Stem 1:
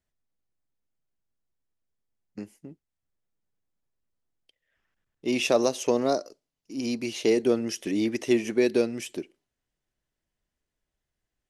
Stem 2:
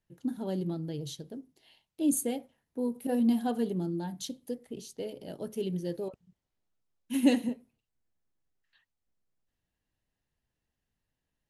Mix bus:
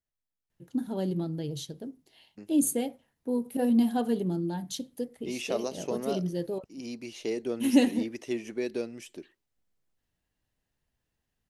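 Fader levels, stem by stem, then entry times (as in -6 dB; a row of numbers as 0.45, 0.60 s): -9.5, +2.5 dB; 0.00, 0.50 s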